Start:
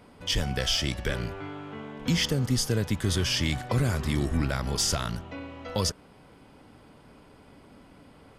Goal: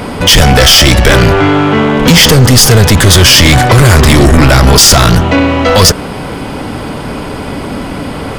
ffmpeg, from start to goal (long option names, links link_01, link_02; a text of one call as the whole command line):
ffmpeg -i in.wav -af "apsyclip=28.5dB,acontrast=68,volume=-1dB" out.wav